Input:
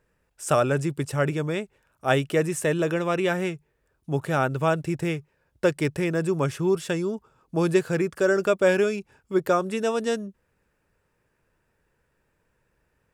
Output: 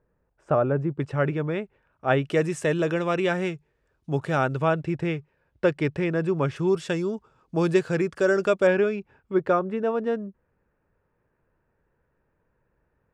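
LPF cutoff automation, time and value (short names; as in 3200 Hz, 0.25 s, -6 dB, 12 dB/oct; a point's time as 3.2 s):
1100 Hz
from 1 s 2400 Hz
from 2.24 s 6000 Hz
from 4.62 s 3400 Hz
from 6.56 s 6300 Hz
from 8.67 s 2500 Hz
from 9.59 s 1500 Hz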